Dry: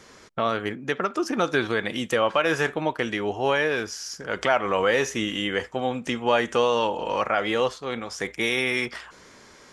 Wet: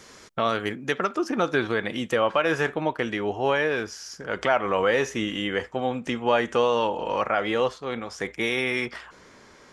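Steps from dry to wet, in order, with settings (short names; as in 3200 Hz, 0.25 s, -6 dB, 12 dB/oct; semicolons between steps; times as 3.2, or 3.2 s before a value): high shelf 3700 Hz +5 dB, from 1.15 s -6.5 dB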